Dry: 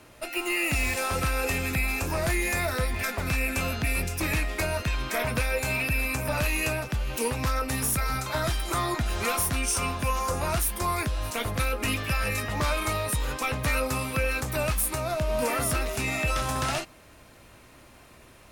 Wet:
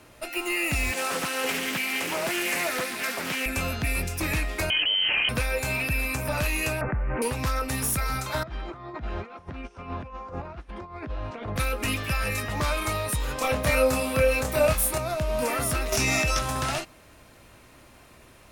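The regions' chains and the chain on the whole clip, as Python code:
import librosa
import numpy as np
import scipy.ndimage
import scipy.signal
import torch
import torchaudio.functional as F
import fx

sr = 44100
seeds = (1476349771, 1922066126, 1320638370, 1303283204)

y = fx.chain(x, sr, fx.highpass(hz=180.0, slope=24),
    fx.echo_wet_highpass(ms=70, feedback_pct=80, hz=2200.0, wet_db=-4),
    fx.doppler_dist(depth_ms=0.54), at=(0.92, 3.46))
y = fx.chain(y, sr, fx.median_filter(points=25),
    fx.freq_invert(carrier_hz=3100),
    fx.env_flatten(amount_pct=100), at=(4.7, 5.29))
y = fx.chain(y, sr, fx.steep_lowpass(hz=2100.0, slope=48),
    fx.env_flatten(amount_pct=70), at=(6.81, 7.22))
y = fx.chain(y, sr, fx.highpass(hz=98.0, slope=6),
    fx.over_compress(threshold_db=-32.0, ratio=-0.5),
    fx.spacing_loss(db_at_10k=41), at=(8.43, 11.56))
y = fx.chain(y, sr, fx.peak_eq(hz=570.0, db=6.5, octaves=0.53),
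    fx.doubler(ms=27.0, db=-2.0), at=(13.35, 14.98))
y = fx.chain(y, sr, fx.peak_eq(hz=5700.0, db=12.5, octaves=0.37),
    fx.env_flatten(amount_pct=100), at=(15.92, 16.39))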